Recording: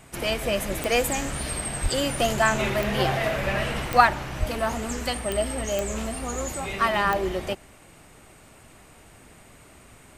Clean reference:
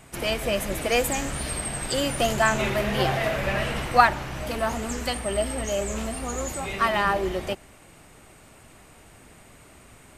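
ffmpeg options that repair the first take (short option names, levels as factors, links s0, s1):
-filter_complex "[0:a]adeclick=t=4,asplit=3[s0][s1][s2];[s0]afade=t=out:st=1.82:d=0.02[s3];[s1]highpass=f=140:w=0.5412,highpass=f=140:w=1.3066,afade=t=in:st=1.82:d=0.02,afade=t=out:st=1.94:d=0.02[s4];[s2]afade=t=in:st=1.94:d=0.02[s5];[s3][s4][s5]amix=inputs=3:normalize=0,asplit=3[s6][s7][s8];[s6]afade=t=out:st=4.39:d=0.02[s9];[s7]highpass=f=140:w=0.5412,highpass=f=140:w=1.3066,afade=t=in:st=4.39:d=0.02,afade=t=out:st=4.51:d=0.02[s10];[s8]afade=t=in:st=4.51:d=0.02[s11];[s9][s10][s11]amix=inputs=3:normalize=0"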